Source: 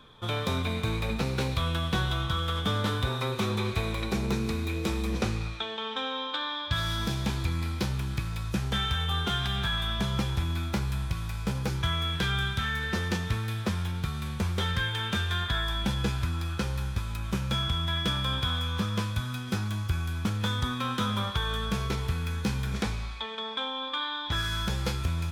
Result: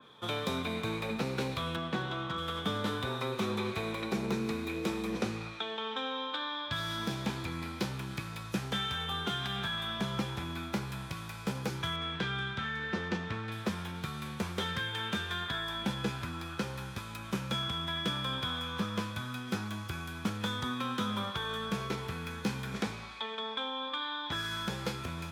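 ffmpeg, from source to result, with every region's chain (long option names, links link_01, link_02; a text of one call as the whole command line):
ffmpeg -i in.wav -filter_complex "[0:a]asettb=1/sr,asplit=3[link_01][link_02][link_03];[link_01]atrim=end=1.764[link_04];[link_02]atrim=start=1.76:end=2.38,asetpts=PTS-STARTPTS,afade=type=in:duration=0.004:curve=qsin,afade=type=out:start_time=0.616:duration=0.004:curve=qsin,highpass=230,aemphasis=mode=reproduction:type=bsi,asoftclip=type=hard:threshold=-23.5dB[link_05];[link_03]atrim=start=2.376[link_06];[link_04][link_05]acrossfade=duration=0.004:curve1=hsin:curve2=qsin[link_07];[link_07][link_06]acrossfade=duration=0.004:curve1=qsin:curve2=hsin,asettb=1/sr,asplit=3[link_08][link_09][link_10];[link_08]atrim=end=11.964[link_11];[link_09]atrim=start=11.96:end=13.52,asetpts=PTS-STARTPTS,afade=type=in:duration=0.004:curve=qsin,afade=type=out:start_time=1.556:duration=0.004:curve=qsin,highshelf=frequency=12000:gain=-7,adynamicsmooth=sensitivity=1.5:basefreq=5400[link_12];[link_10]atrim=start=13.516[link_13];[link_11][link_12]acrossfade=duration=0.004:curve1=hsin:curve2=qsin[link_14];[link_14][link_13]acrossfade=duration=0.004:curve1=qsin:curve2=hsin,highpass=180,acrossover=split=440|3000[link_15][link_16][link_17];[link_16]acompressor=threshold=-34dB:ratio=6[link_18];[link_15][link_18][link_17]amix=inputs=3:normalize=0,adynamicequalizer=threshold=0.00447:dfrequency=3000:dqfactor=0.7:tfrequency=3000:tqfactor=0.7:attack=5:release=100:ratio=0.375:range=2.5:mode=cutabove:tftype=highshelf,volume=-1dB" out.wav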